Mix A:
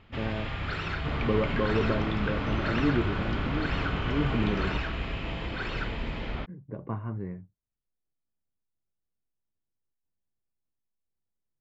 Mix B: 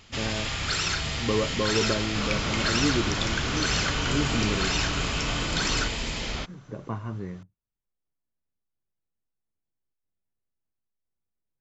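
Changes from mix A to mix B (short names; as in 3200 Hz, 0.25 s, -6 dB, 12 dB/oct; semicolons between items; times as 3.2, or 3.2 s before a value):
second sound: entry +1.10 s; master: remove air absorption 500 m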